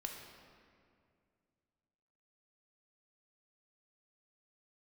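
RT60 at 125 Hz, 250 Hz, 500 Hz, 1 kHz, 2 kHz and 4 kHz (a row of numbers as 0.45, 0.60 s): 2.9, 2.7, 2.4, 2.1, 1.9, 1.4 s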